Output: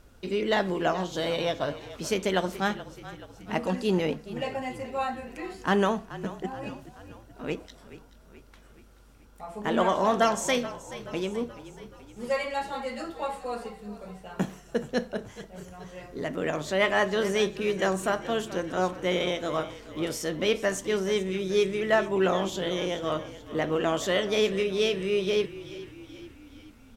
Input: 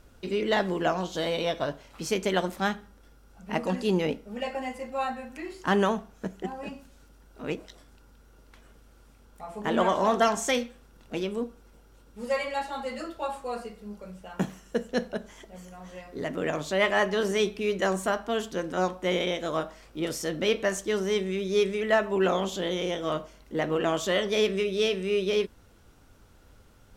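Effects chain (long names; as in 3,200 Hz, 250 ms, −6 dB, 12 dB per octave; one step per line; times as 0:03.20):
echo with shifted repeats 428 ms, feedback 56%, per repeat −37 Hz, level −15.5 dB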